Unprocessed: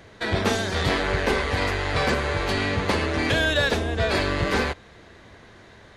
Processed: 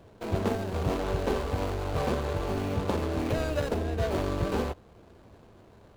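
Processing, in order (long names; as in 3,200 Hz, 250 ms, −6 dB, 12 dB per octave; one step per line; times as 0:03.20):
running median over 25 samples
level −3.5 dB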